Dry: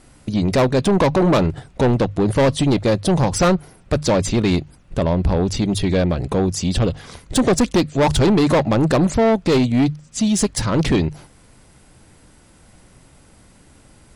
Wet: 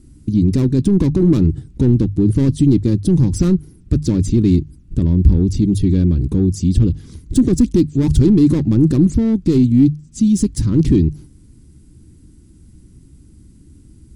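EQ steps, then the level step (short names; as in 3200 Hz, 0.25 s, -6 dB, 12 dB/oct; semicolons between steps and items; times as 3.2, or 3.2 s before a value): tone controls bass +7 dB, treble +11 dB; bell 63 Hz +7 dB 1.3 oct; resonant low shelf 450 Hz +11.5 dB, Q 3; -15.5 dB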